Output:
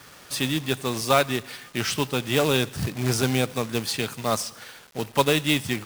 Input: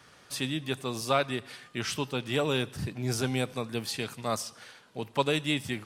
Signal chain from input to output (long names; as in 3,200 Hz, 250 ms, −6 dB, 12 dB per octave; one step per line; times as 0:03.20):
log-companded quantiser 4 bits
level +6 dB